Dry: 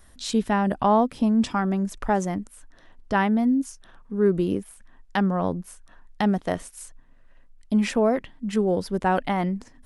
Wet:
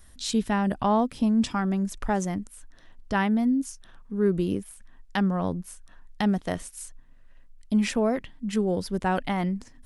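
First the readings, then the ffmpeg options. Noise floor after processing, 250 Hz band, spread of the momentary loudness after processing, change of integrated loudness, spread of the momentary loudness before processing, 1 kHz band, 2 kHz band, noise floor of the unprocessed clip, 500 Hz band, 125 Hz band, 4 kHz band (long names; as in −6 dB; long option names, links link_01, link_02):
−51 dBFS, −1.5 dB, 12 LU, −2.5 dB, 11 LU, −4.0 dB, −2.0 dB, −53 dBFS, −4.0 dB, −1.0 dB, 0.0 dB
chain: -af "equalizer=frequency=660:width=0.35:gain=-6,volume=1.5dB"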